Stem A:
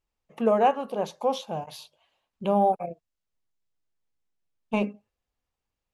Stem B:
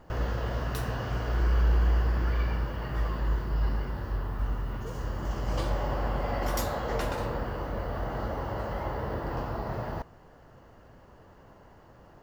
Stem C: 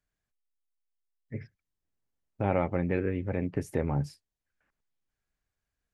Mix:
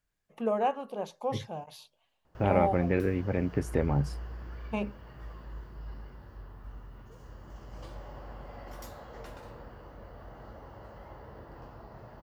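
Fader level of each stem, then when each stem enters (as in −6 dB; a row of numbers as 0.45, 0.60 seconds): −7.0, −15.0, +1.5 decibels; 0.00, 2.25, 0.00 seconds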